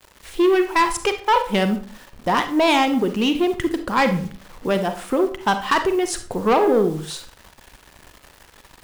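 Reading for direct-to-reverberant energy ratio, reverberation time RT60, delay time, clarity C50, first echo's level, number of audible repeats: 7.5 dB, 0.45 s, none, 10.5 dB, none, none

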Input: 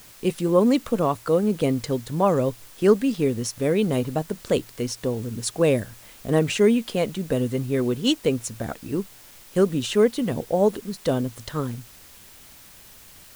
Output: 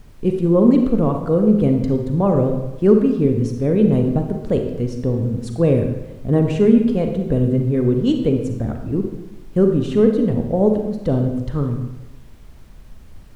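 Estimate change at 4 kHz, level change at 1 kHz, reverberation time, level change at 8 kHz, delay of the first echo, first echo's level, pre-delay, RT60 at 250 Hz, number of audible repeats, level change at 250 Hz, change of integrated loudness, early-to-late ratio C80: -9.0 dB, -1.0 dB, 1.0 s, under -10 dB, none, none, 35 ms, 1.1 s, none, +7.5 dB, +5.5 dB, 8.0 dB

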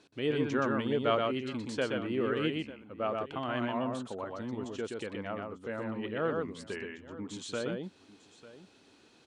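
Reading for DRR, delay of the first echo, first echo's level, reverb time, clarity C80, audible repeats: none, 0.124 s, -3.5 dB, none, none, 2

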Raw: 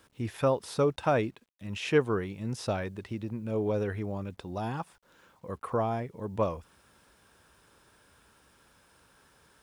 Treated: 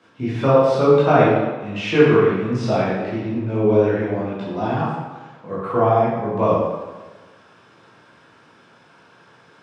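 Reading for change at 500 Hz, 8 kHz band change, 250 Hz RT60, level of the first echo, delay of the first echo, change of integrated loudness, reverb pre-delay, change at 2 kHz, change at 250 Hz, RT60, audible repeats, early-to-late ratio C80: +13.5 dB, n/a, 1.2 s, none, none, +13.0 dB, 12 ms, +12.0 dB, +13.0 dB, 1.3 s, none, 1.5 dB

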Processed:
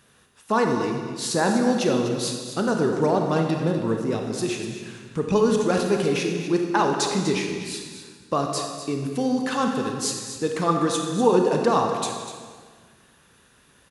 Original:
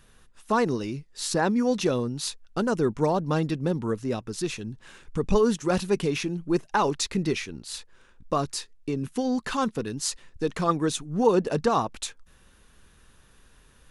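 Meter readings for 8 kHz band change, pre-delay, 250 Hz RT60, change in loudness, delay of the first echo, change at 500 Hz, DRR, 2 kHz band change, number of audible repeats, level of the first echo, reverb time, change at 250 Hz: +3.5 dB, 27 ms, 1.8 s, +3.5 dB, 0.247 s, +3.5 dB, 2.0 dB, +3.5 dB, 1, -12.0 dB, 1.6 s, +3.5 dB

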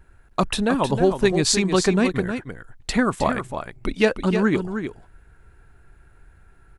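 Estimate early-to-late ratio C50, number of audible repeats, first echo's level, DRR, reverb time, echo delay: none, 1, -8.0 dB, none, none, 0.312 s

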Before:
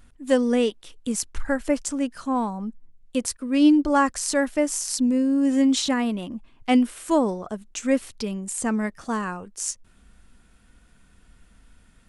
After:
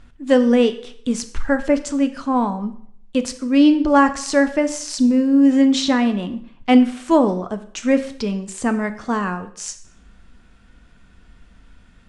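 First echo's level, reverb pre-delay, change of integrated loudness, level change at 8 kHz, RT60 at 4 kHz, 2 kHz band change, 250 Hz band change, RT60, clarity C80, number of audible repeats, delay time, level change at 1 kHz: none, 7 ms, +5.5 dB, -2.0 dB, 0.60 s, +5.5 dB, +5.5 dB, 0.65 s, 16.5 dB, none, none, +5.5 dB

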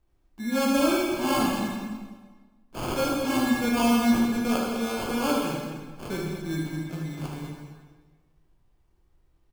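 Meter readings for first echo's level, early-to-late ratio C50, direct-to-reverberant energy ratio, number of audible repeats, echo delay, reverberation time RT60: -6.5 dB, -0.5 dB, -3.0 dB, 2, 76 ms, 1.4 s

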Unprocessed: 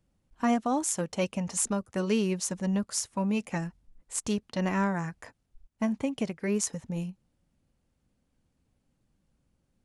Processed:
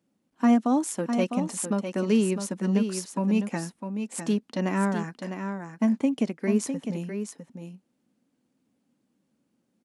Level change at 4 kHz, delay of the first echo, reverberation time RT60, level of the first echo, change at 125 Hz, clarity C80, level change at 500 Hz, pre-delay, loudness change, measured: -1.0 dB, 0.654 s, none, -7.5 dB, +2.5 dB, none, +3.0 dB, none, +3.5 dB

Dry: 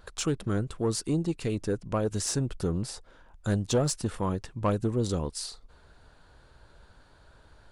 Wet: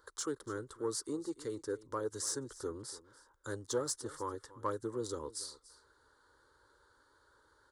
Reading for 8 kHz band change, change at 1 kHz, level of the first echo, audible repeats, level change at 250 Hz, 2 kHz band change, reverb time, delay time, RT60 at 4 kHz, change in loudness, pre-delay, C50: -5.0 dB, -6.0 dB, -18.5 dB, 1, -12.5 dB, -7.5 dB, none, 0.289 s, none, -9.5 dB, none, none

